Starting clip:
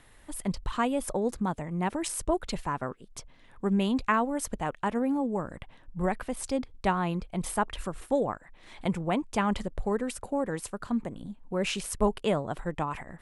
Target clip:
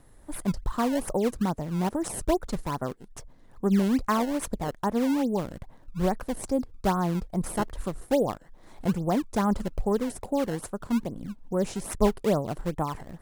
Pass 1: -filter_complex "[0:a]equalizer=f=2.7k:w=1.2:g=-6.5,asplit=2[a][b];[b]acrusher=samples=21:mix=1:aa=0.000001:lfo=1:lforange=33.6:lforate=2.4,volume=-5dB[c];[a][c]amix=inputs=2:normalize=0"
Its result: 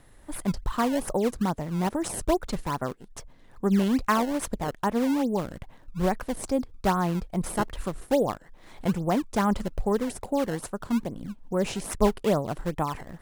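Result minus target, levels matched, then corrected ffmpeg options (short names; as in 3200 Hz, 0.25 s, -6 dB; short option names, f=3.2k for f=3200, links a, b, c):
2000 Hz band +2.5 dB
-filter_complex "[0:a]equalizer=f=2.7k:w=1.2:g=-18,asplit=2[a][b];[b]acrusher=samples=21:mix=1:aa=0.000001:lfo=1:lforange=33.6:lforate=2.4,volume=-5dB[c];[a][c]amix=inputs=2:normalize=0"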